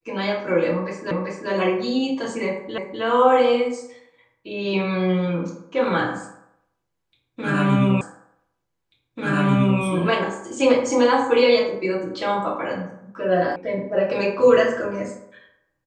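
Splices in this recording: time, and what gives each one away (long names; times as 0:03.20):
0:01.11: the same again, the last 0.39 s
0:02.78: the same again, the last 0.25 s
0:08.01: the same again, the last 1.79 s
0:13.56: cut off before it has died away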